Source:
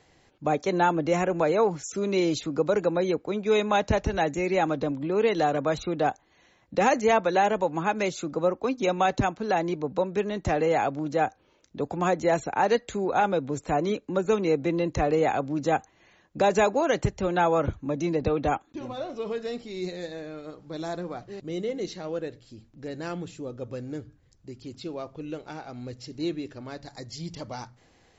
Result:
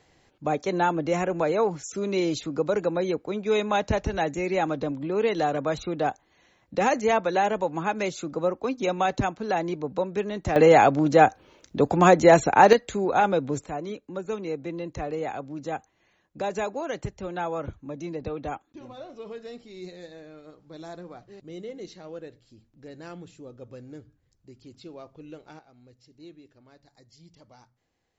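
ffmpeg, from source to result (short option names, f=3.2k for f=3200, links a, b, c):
-af "asetnsamples=n=441:p=0,asendcmd='10.56 volume volume 8.5dB;12.73 volume volume 2dB;13.66 volume volume -7.5dB;25.59 volume volume -17dB',volume=-1dB"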